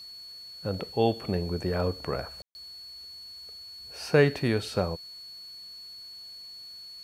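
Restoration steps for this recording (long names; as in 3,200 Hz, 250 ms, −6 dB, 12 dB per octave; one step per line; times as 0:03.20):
notch filter 4,400 Hz, Q 30
ambience match 0:02.42–0:02.55
downward expander −37 dBFS, range −21 dB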